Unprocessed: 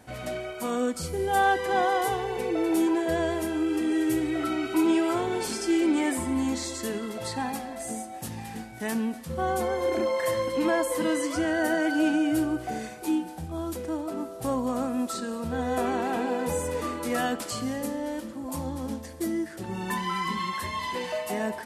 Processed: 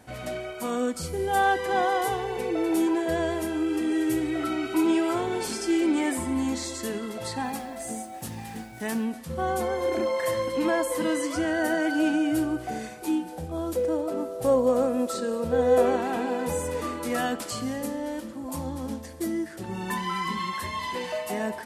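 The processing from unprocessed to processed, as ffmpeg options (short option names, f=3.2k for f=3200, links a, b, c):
-filter_complex "[0:a]asettb=1/sr,asplit=3[a][b][c];[a]atrim=end=7.444[d];[b]atrim=start=7.44:end=9.04,asetpts=PTS-STARTPTS,afade=t=in:d=0.004:c=qsin,afade=t=out:st=1.596:d=0.004:c=qsin,acrusher=bits=8:mix=0:aa=0.5[e];[c]atrim=start=9.036[f];[d][e]acrossfade=d=0.004:c1=hsin:c2=qsin[g];[g][f]acrossfade=d=0.004:c1=qsin:c2=hsin,asettb=1/sr,asplit=3[h][i][j];[h]atrim=end=13.324[k];[i]atrim=start=13.32:end=15.96,asetpts=PTS-STARTPTS,afade=t=in:d=0.004:c=qsin,afade=t=out:st=2.636:d=0.004:c=qsin,equalizer=f=510:w=3.4:g=12.5[l];[j]atrim=start=15.956[m];[k][l]acrossfade=d=0.004:c1=hsin:c2=qsin[n];[n][m]acrossfade=d=0.004:c1=qsin:c2=hsin"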